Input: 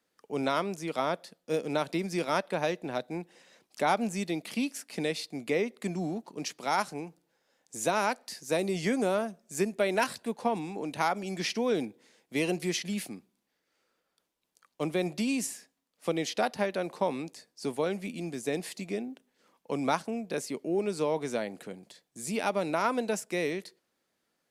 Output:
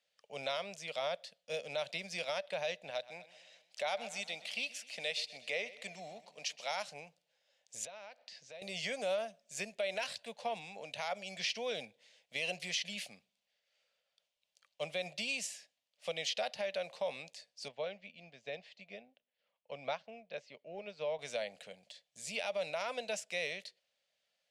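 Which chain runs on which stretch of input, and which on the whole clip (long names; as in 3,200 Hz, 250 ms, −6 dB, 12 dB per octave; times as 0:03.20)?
0:02.90–0:06.71: low-shelf EQ 240 Hz −9.5 dB + repeating echo 126 ms, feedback 53%, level −17 dB
0:07.85–0:08.62: downward compressor, threshold −40 dBFS + high-frequency loss of the air 130 metres
0:17.68–0:21.19: high-frequency loss of the air 200 metres + expander for the loud parts, over −43 dBFS
whole clip: drawn EQ curve 120 Hz 0 dB, 210 Hz −6 dB, 330 Hz −19 dB, 580 Hz +6 dB, 920 Hz −7 dB, 1,300 Hz −8 dB, 2,900 Hz +6 dB, 7,400 Hz −3 dB, 12,000 Hz −13 dB; brickwall limiter −21 dBFS; low-shelf EQ 470 Hz −11.5 dB; level −2 dB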